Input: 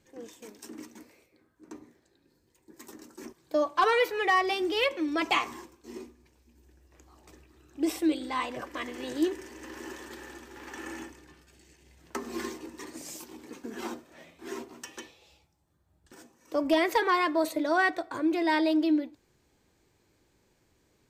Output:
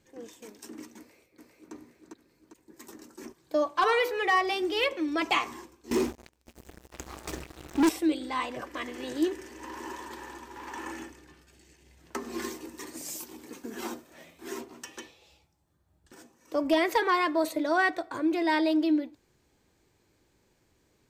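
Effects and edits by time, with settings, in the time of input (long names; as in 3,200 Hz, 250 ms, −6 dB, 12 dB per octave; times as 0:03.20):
0:00.98–0:01.73: delay throw 400 ms, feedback 50%, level −2 dB
0:03.71–0:04.93: hum removal 54.77 Hz, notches 24
0:05.91–0:07.89: leveller curve on the samples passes 5
0:09.59–0:10.92: parametric band 970 Hz +14 dB 0.28 octaves
0:12.42–0:14.61: high-shelf EQ 8,000 Hz +9.5 dB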